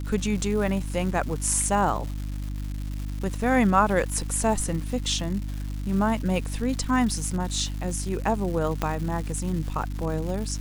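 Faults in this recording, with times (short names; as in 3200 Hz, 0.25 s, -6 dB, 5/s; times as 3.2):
crackle 360/s -33 dBFS
hum 50 Hz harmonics 6 -31 dBFS
8.82 pop -11 dBFS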